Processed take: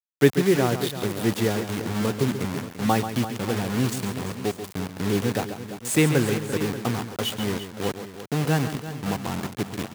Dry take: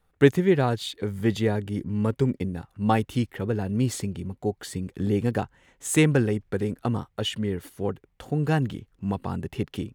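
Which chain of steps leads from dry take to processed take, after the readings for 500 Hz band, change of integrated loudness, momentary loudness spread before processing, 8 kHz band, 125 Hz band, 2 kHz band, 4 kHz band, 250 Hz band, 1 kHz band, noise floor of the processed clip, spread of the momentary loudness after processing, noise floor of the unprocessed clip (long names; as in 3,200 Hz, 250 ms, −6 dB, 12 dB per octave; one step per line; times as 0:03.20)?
+1.0 dB, +1.0 dB, 11 LU, +4.0 dB, −0.5 dB, +3.0 dB, +3.5 dB, +0.5 dB, +2.0 dB, −43 dBFS, 10 LU, −68 dBFS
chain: bit reduction 5 bits
high-pass filter 99 Hz
on a send: multi-tap delay 137/341/584 ms −10/−12.5/−14.5 dB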